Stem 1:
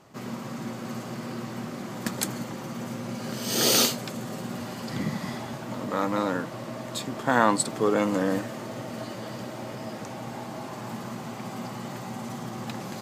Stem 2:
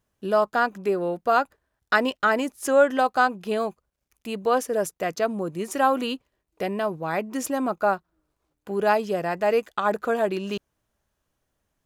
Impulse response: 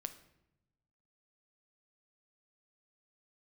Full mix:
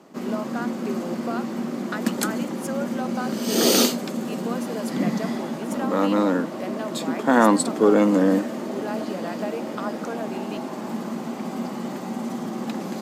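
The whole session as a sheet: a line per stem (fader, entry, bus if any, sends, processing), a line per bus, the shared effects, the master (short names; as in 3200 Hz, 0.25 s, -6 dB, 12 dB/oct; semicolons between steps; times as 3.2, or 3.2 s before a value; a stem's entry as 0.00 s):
+0.5 dB, 0.00 s, no send, steep high-pass 170 Hz 36 dB/oct; bell 270 Hz +8.5 dB 2.3 oct
-5.5 dB, 0.00 s, no send, compressor, threshold -23 dBFS, peak gain reduction 10.5 dB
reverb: off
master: dry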